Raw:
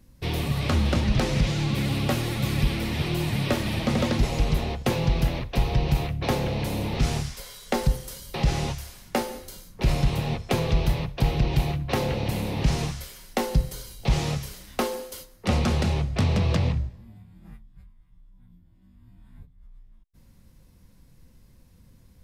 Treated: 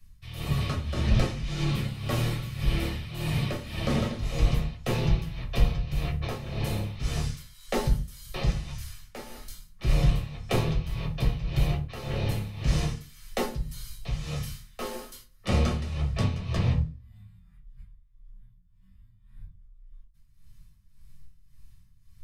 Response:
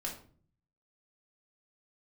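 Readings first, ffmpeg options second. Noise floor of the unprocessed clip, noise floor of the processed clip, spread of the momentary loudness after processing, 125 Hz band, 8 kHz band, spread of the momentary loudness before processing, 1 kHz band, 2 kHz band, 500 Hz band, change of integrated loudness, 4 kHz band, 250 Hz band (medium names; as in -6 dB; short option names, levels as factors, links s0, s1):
-55 dBFS, -57 dBFS, 12 LU, -3.0 dB, -5.5 dB, 8 LU, -6.5 dB, -5.0 dB, -5.5 dB, -3.5 dB, -4.5 dB, -5.0 dB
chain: -filter_complex "[0:a]tremolo=f=1.8:d=0.74,acrossover=split=180|1000[s0][s1][s2];[s1]aeval=exprs='sgn(val(0))*max(abs(val(0))-0.00891,0)':c=same[s3];[s0][s3][s2]amix=inputs=3:normalize=0[s4];[1:a]atrim=start_sample=2205,asetrate=83790,aresample=44100[s5];[s4][s5]afir=irnorm=-1:irlink=0,volume=1.5"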